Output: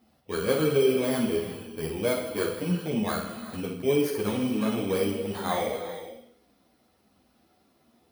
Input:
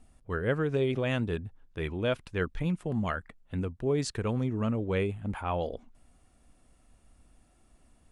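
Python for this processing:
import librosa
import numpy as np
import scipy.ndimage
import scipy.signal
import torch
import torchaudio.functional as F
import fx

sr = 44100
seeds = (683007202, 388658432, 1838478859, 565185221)

p1 = fx.bit_reversed(x, sr, seeds[0], block=16)
p2 = scipy.signal.sosfilt(scipy.signal.butter(2, 200.0, 'highpass', fs=sr, output='sos'), p1)
p3 = fx.high_shelf(p2, sr, hz=3800.0, db=-7.5)
p4 = p3 + fx.room_flutter(p3, sr, wall_m=8.7, rt60_s=0.56, dry=0)
p5 = fx.rev_gated(p4, sr, seeds[1], gate_ms=480, shape='flat', drr_db=7.5)
p6 = fx.ensemble(p5, sr)
y = p6 * 10.0 ** (7.0 / 20.0)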